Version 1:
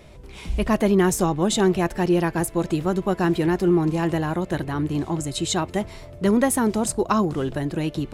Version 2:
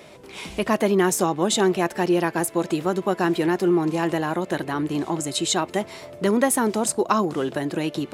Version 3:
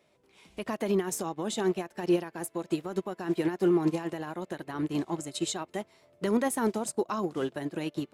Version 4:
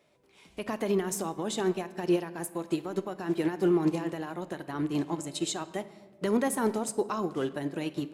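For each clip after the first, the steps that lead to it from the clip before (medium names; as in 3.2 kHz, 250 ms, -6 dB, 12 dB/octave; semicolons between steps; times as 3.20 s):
Bessel high-pass 280 Hz, order 2; in parallel at -1 dB: compression, threshold -31 dBFS, peak gain reduction 14.5 dB
peak limiter -15.5 dBFS, peak gain reduction 10 dB; upward expansion 2.5:1, over -35 dBFS
reverberation RT60 1.2 s, pre-delay 7 ms, DRR 12.5 dB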